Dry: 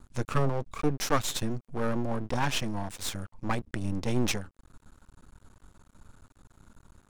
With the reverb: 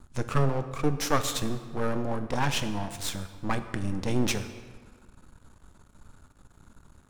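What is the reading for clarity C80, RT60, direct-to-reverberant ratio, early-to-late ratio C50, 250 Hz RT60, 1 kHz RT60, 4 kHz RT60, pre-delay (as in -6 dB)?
12.5 dB, 1.7 s, 9.0 dB, 11.0 dB, 1.8 s, 1.7 s, 1.2 s, 10 ms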